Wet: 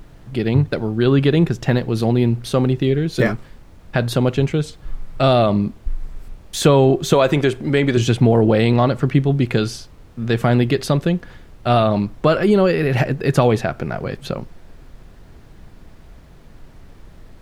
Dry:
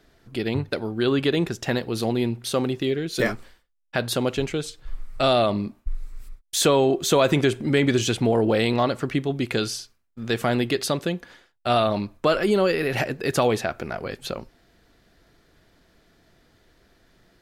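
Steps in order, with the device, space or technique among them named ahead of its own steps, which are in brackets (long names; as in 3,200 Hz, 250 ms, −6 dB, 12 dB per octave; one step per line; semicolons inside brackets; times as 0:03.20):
0:07.13–0:07.97: bass and treble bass −10 dB, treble +1 dB
car interior (parametric band 140 Hz +9 dB 0.98 octaves; high-shelf EQ 3,300 Hz −8 dB; brown noise bed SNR 22 dB)
level +4.5 dB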